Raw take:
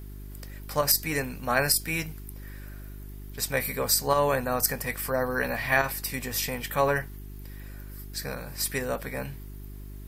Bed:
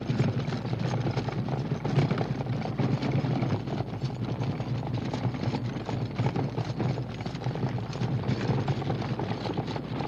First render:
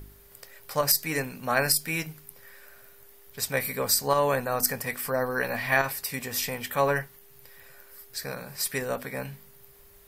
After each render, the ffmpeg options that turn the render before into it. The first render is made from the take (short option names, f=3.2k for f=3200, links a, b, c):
-af "bandreject=f=50:t=h:w=4,bandreject=f=100:t=h:w=4,bandreject=f=150:t=h:w=4,bandreject=f=200:t=h:w=4,bandreject=f=250:t=h:w=4,bandreject=f=300:t=h:w=4,bandreject=f=350:t=h:w=4"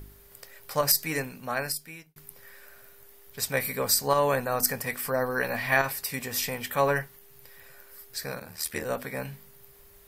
-filter_complex "[0:a]asplit=3[a][b][c];[a]afade=t=out:st=8.39:d=0.02[d];[b]aeval=exprs='val(0)*sin(2*PI*39*n/s)':c=same,afade=t=in:st=8.39:d=0.02,afade=t=out:st=8.84:d=0.02[e];[c]afade=t=in:st=8.84:d=0.02[f];[d][e][f]amix=inputs=3:normalize=0,asplit=2[g][h];[g]atrim=end=2.16,asetpts=PTS-STARTPTS,afade=t=out:st=1.02:d=1.14[i];[h]atrim=start=2.16,asetpts=PTS-STARTPTS,afade=t=in:d=0.004:c=hsin[j];[i][j]concat=n=2:v=0:a=1"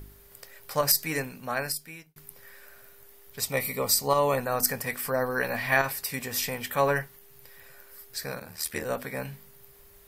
-filter_complex "[0:a]asettb=1/sr,asplit=3[a][b][c];[a]atrim=end=3.404[d];[b]atrim=start=3.4:end=4.38,asetpts=PTS-STARTPTS,afade=t=in:d=0.004:c=qsin,afade=t=out:st=0.976:d=0.004:c=qsin,asuperstop=centerf=1600:order=4:qfactor=4.1[e];[c]atrim=start=4.376[f];[d][e]acrossfade=d=0.004:c1=hsin:c2=qsin[g];[g][f]acrossfade=d=0.004:c1=qsin:c2=hsin"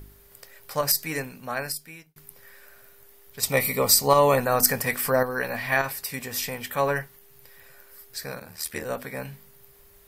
-filter_complex "[0:a]asettb=1/sr,asplit=3[a][b][c];[a]atrim=end=3.434[d];[b]atrim=start=3.43:end=5.23,asetpts=PTS-STARTPTS,afade=t=in:d=0.004:c=qsin,afade=t=out:st=1.796:d=0.004:c=qsin,acontrast=46[e];[c]atrim=start=5.226[f];[d][e]acrossfade=d=0.004:c1=hsin:c2=qsin[g];[g][f]acrossfade=d=0.004:c1=qsin:c2=hsin"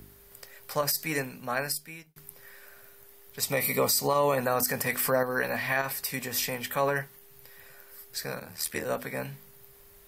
-filter_complex "[0:a]acrossover=split=100|2400[a][b][c];[a]acompressor=threshold=-56dB:ratio=6[d];[d][b][c]amix=inputs=3:normalize=0,alimiter=limit=-15.5dB:level=0:latency=1:release=102"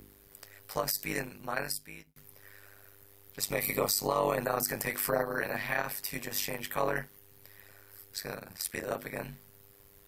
-af "tremolo=f=100:d=0.947"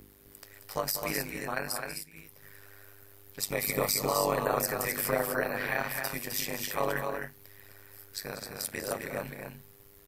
-af "aecho=1:1:192.4|259.5:0.282|0.562"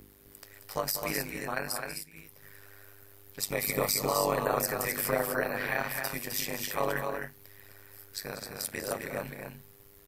-af anull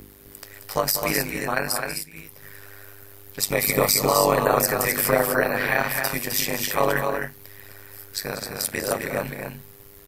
-af "volume=9dB"